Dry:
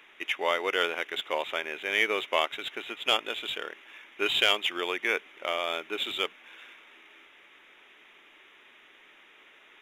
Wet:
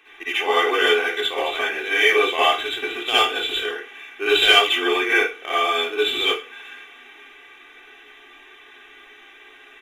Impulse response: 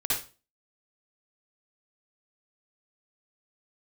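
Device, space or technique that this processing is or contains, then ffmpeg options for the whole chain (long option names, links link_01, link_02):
microphone above a desk: -filter_complex "[0:a]aecho=1:1:2.6:0.81[link_01];[1:a]atrim=start_sample=2205[link_02];[link_01][link_02]afir=irnorm=-1:irlink=0,volume=-1dB"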